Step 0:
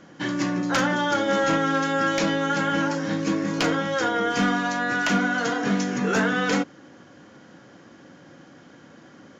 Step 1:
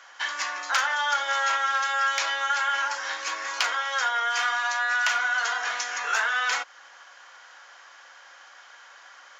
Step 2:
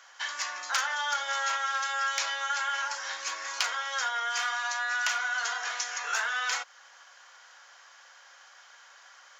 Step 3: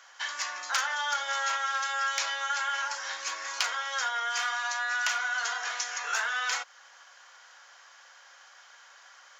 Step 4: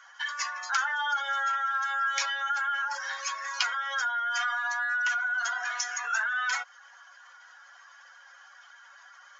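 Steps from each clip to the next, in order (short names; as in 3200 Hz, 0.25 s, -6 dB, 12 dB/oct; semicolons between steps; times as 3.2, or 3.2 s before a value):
HPF 880 Hz 24 dB/oct; in parallel at +3 dB: compressor, threshold -35 dBFS, peak gain reduction 14 dB; on the sum: gain -1.5 dB
tone controls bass -13 dB, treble +6 dB; gain -5.5 dB
nothing audible
spectral contrast raised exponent 1.8; HPF 220 Hz; gain +1.5 dB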